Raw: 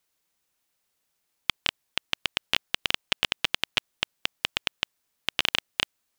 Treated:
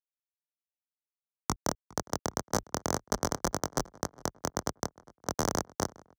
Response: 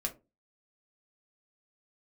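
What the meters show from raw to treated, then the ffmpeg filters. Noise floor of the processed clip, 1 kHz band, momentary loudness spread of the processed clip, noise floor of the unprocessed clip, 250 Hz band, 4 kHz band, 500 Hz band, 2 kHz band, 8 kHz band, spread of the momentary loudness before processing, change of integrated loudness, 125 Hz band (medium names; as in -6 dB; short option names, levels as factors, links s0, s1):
under -85 dBFS, +4.0 dB, 7 LU, -77 dBFS, +10.0 dB, -16.0 dB, +9.0 dB, -12.5 dB, +7.5 dB, 6 LU, -5.5 dB, +10.0 dB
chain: -filter_complex "[0:a]highshelf=f=5200:g=4,afftfilt=real='re*between(b*sr/4096,370,7700)':imag='im*between(b*sr/4096,370,7700)':win_size=4096:overlap=0.75,acrossover=split=1500[s0][s1];[s1]aeval=exprs='abs(val(0))':c=same[s2];[s0][s2]amix=inputs=2:normalize=0,afreqshift=27,aeval=exprs='sgn(val(0))*max(abs(val(0))-0.0112,0)':c=same,flanger=delay=20:depth=5.4:speed=1.9,asplit=2[s3][s4];[s4]adelay=409,lowpass=f=2600:p=1,volume=0.0794,asplit=2[s5][s6];[s6]adelay=409,lowpass=f=2600:p=1,volume=0.51,asplit=2[s7][s8];[s8]adelay=409,lowpass=f=2600:p=1,volume=0.51,asplit=2[s9][s10];[s10]adelay=409,lowpass=f=2600:p=1,volume=0.51[s11];[s5][s7][s9][s11]amix=inputs=4:normalize=0[s12];[s3][s12]amix=inputs=2:normalize=0"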